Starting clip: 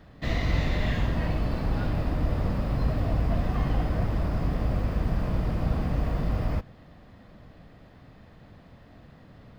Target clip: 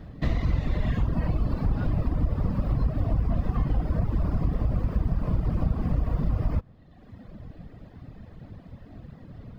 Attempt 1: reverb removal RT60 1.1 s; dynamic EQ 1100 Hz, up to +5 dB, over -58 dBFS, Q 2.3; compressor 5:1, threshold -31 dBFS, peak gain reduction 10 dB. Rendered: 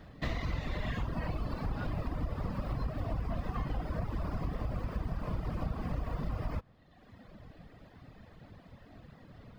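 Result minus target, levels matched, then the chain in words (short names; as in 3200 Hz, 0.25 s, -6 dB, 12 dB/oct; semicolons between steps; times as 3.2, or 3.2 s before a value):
500 Hz band +4.5 dB
reverb removal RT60 1.1 s; dynamic EQ 1100 Hz, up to +5 dB, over -58 dBFS, Q 2.3; compressor 5:1, threshold -31 dBFS, peak gain reduction 10 dB; low shelf 480 Hz +11 dB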